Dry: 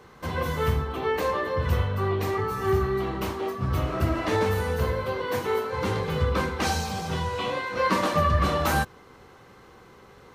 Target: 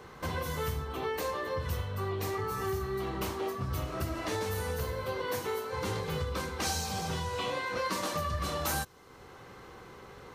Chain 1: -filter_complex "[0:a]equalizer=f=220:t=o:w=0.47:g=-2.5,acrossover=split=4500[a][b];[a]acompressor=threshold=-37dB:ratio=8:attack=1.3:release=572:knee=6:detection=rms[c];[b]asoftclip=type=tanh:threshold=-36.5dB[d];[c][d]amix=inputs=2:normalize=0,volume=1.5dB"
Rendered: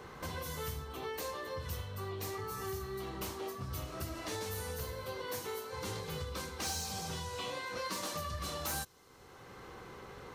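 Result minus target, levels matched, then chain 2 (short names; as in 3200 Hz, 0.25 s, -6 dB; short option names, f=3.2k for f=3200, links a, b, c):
soft clip: distortion +15 dB; compressor: peak gain reduction +7 dB
-filter_complex "[0:a]equalizer=f=220:t=o:w=0.47:g=-2.5,acrossover=split=4500[a][b];[a]acompressor=threshold=-29dB:ratio=8:attack=1.3:release=572:knee=6:detection=rms[c];[b]asoftclip=type=tanh:threshold=-25dB[d];[c][d]amix=inputs=2:normalize=0,volume=1.5dB"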